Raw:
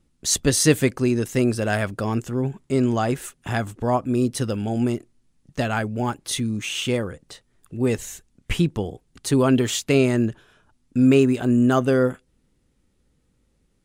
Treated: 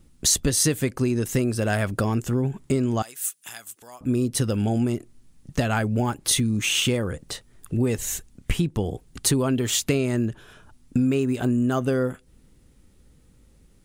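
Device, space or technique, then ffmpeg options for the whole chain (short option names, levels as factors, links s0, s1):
ASMR close-microphone chain: -filter_complex "[0:a]lowshelf=f=140:g=5,acompressor=threshold=0.0447:ratio=6,highshelf=f=10000:g=8,asettb=1/sr,asplit=3[s0][s1][s2];[s0]atrim=end=3.024[s3];[s1]atrim=start=3.02:end=4.01,asetpts=PTS-STARTPTS,afade=t=in:d=0.004:c=qsin,afade=t=out:st=0.986:d=0.004:c=qsin,aderivative[s4];[s2]atrim=start=4.006[s5];[s3][s4]acrossfade=d=0.004:c1=hsin:c2=qsin[s6];[s6][s5]acrossfade=d=0.004:c1=qsin:c2=hsin,volume=2.24"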